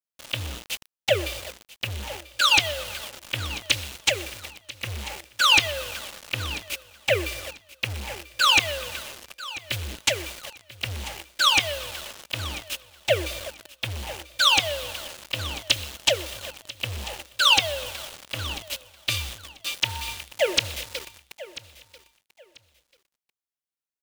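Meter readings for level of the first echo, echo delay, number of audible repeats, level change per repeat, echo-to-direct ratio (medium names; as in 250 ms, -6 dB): -17.0 dB, 990 ms, 2, -12.5 dB, -17.0 dB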